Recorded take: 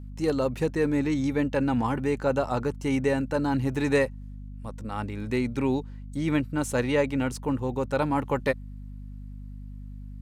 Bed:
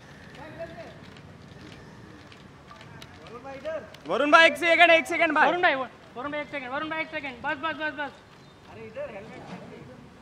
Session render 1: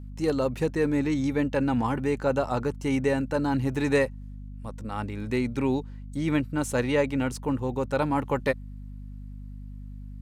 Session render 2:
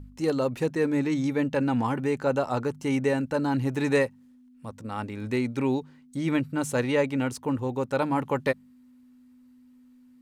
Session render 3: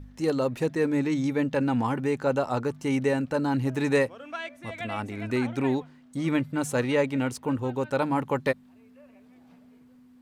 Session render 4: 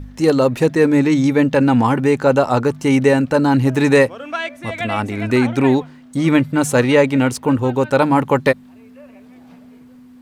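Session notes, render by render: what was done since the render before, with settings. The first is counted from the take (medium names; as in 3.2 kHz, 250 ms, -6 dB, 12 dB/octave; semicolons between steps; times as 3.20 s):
no audible change
de-hum 50 Hz, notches 4
add bed -20 dB
trim +11.5 dB; peak limiter -2 dBFS, peak gain reduction 2 dB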